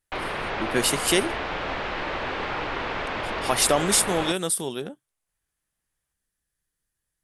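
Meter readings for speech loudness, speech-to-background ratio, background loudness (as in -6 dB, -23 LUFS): -23.0 LUFS, 6.5 dB, -29.5 LUFS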